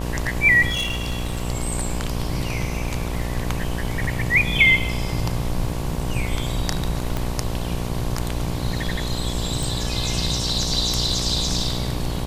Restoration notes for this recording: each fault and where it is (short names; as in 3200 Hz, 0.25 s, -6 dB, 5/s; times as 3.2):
buzz 60 Hz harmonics 19 -27 dBFS
0.69–1.45 clipped -20.5 dBFS
7.17 pop -11 dBFS
9.63 pop